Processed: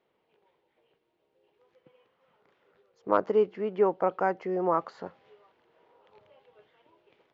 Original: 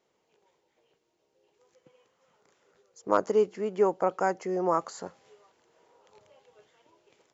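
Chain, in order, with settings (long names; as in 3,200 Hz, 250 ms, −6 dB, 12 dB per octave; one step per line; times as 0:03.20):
low-pass filter 3,600 Hz 24 dB per octave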